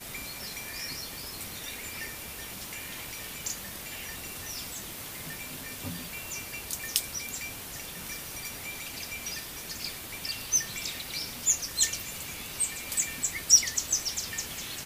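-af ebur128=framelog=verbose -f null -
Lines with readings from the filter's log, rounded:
Integrated loudness:
  I:         -31.0 LUFS
  Threshold: -41.0 LUFS
Loudness range:
  LRA:        10.6 LU
  Threshold: -51.7 LUFS
  LRA low:   -36.8 LUFS
  LRA high:  -26.2 LUFS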